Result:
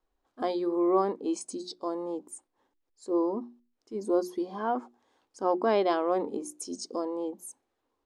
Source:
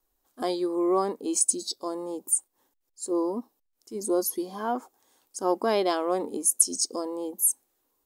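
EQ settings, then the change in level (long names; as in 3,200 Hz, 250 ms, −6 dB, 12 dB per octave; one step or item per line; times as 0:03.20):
Bessel low-pass filter 2,600 Hz, order 2
mains-hum notches 60/120/180/240/300/360 Hz
0.0 dB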